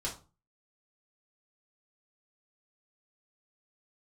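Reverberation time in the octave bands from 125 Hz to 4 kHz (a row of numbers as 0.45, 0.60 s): 0.50, 0.40, 0.35, 0.35, 0.25, 0.25 s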